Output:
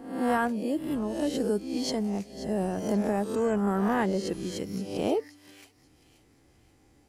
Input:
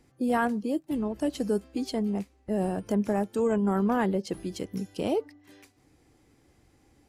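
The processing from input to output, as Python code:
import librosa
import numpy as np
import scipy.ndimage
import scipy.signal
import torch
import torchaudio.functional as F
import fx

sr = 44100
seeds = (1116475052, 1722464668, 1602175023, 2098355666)

y = fx.spec_swells(x, sr, rise_s=0.67)
y = fx.peak_eq(y, sr, hz=6000.0, db=8.5, octaves=0.67, at=(1.84, 2.53))
y = fx.echo_wet_highpass(y, sr, ms=531, feedback_pct=36, hz=2800.0, wet_db=-13)
y = y * librosa.db_to_amplitude(-1.5)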